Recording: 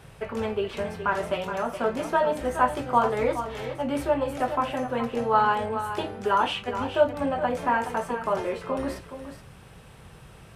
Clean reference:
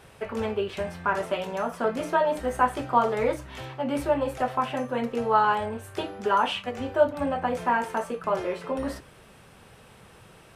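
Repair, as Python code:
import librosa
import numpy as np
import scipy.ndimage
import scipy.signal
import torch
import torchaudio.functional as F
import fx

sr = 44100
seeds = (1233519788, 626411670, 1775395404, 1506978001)

y = fx.noise_reduce(x, sr, print_start_s=9.49, print_end_s=9.99, reduce_db=6.0)
y = fx.fix_echo_inverse(y, sr, delay_ms=421, level_db=-10.0)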